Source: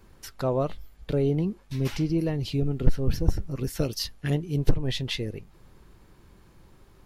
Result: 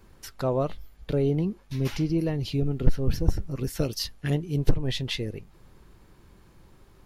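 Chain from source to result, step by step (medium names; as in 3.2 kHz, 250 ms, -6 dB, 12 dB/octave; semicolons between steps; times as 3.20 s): 0.67–3.02 s: band-stop 7.9 kHz, Q 9.2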